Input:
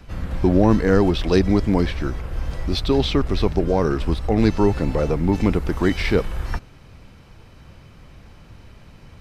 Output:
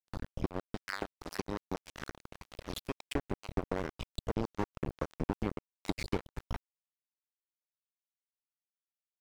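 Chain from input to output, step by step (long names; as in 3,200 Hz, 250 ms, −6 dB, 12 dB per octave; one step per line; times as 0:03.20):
time-frequency cells dropped at random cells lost 46%
0:00.51–0:02.93: low-shelf EQ 450 Hz −9 dB
downward compressor 4 to 1, threshold −34 dBFS, peak gain reduction 17.5 dB
dead-zone distortion −32 dBFS
level +7.5 dB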